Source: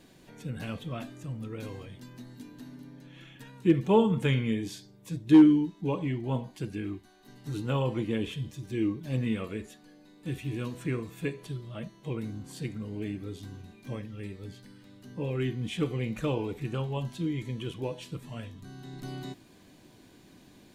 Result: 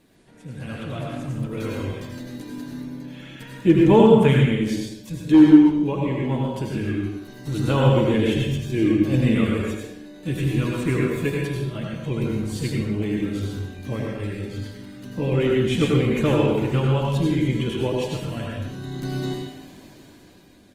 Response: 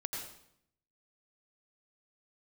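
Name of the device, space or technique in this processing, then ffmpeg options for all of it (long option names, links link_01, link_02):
speakerphone in a meeting room: -filter_complex "[0:a]asettb=1/sr,asplit=3[link_01][link_02][link_03];[link_01]atrim=end=11.634[link_04];[link_02]atrim=start=11.63:end=12.24,asetpts=PTS-STARTPTS,afade=type=in:duration=0.004:curve=qsin,afade=type=out:start_time=0.606:duration=0.004:curve=qsin,equalizer=frequency=800:width_type=o:width=1.5:gain=-4[link_05];[link_03]atrim=start=12.236[link_06];[link_04][link_05]acrossfade=duration=0.004:curve1=hsin:curve2=qsin[link_07];[link_07][link_06]acrossfade=duration=0.004:curve1=qsin:curve2=hsin[link_08];[1:a]atrim=start_sample=2205[link_09];[link_08][link_09]afir=irnorm=-1:irlink=0,asplit=2[link_10][link_11];[link_11]adelay=130,highpass=300,lowpass=3400,asoftclip=type=hard:threshold=-14.5dB,volume=-7dB[link_12];[link_10][link_12]amix=inputs=2:normalize=0,dynaudnorm=framelen=220:gausssize=9:maxgain=10dB" -ar 48000 -c:a libopus -b:a 24k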